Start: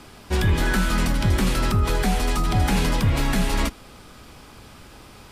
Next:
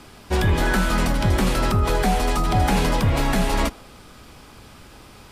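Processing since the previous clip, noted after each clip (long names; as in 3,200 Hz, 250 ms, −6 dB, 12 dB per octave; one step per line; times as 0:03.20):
dynamic equaliser 670 Hz, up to +6 dB, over −41 dBFS, Q 0.86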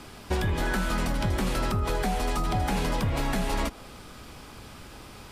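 downward compressor 5 to 1, threshold −24 dBFS, peak gain reduction 9 dB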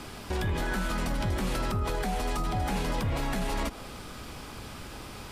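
brickwall limiter −25 dBFS, peak gain reduction 10 dB
level +3 dB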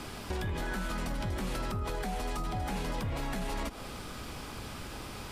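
downward compressor 2.5 to 1, threshold −33 dBFS, peak gain reduction 5.5 dB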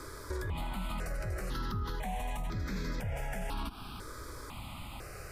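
step-sequenced phaser 2 Hz 760–2,900 Hz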